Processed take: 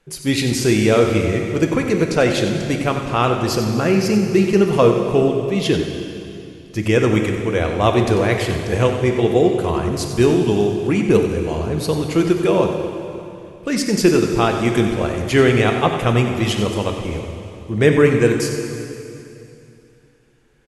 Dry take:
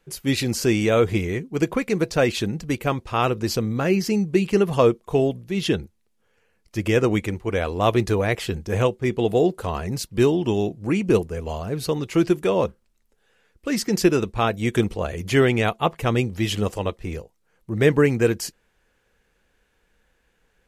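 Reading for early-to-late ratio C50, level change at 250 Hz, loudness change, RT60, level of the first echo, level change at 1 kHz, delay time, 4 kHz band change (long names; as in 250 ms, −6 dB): 4.5 dB, +5.0 dB, +4.5 dB, 2.8 s, −10.5 dB, +4.5 dB, 93 ms, +4.5 dB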